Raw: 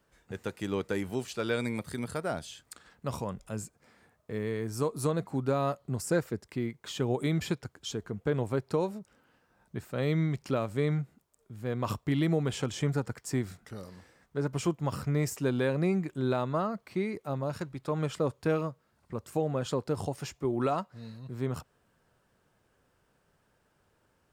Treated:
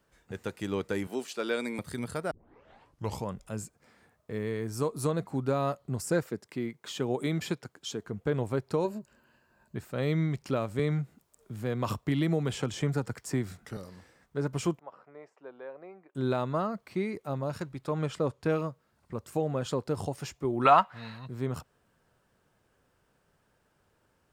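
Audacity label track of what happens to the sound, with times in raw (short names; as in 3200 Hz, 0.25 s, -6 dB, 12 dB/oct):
1.070000	1.790000	HPF 220 Hz 24 dB/oct
2.310000	2.310000	tape start 0.94 s
6.230000	8.070000	HPF 150 Hz
8.840000	9.760000	ripple EQ crests per octave 1.4, crest to trough 9 dB
10.790000	13.770000	three-band squash depth 40%
14.790000	16.150000	ladder band-pass 830 Hz, resonance 25%
17.940000	18.520000	high shelf 11000 Hz -9 dB
20.650000	21.260000	band shelf 1600 Hz +14 dB 2.7 oct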